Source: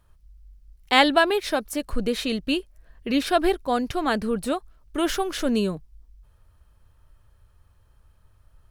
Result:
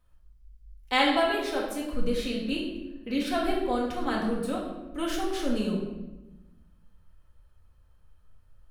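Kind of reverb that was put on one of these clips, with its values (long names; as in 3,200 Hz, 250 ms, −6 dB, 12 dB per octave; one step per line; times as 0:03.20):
rectangular room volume 520 cubic metres, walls mixed, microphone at 2 metres
level −10.5 dB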